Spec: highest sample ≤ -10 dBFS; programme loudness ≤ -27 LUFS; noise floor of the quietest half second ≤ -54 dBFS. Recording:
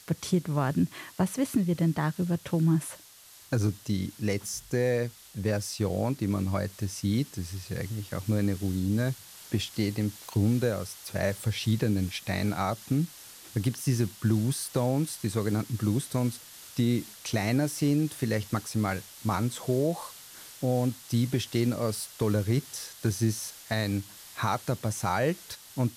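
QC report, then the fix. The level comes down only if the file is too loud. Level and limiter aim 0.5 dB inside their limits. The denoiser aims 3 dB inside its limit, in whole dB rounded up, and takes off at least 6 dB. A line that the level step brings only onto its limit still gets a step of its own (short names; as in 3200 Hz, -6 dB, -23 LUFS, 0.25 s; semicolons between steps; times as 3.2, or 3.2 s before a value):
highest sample -14.0 dBFS: OK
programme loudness -29.5 LUFS: OK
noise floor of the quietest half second -53 dBFS: fail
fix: denoiser 6 dB, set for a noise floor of -53 dBFS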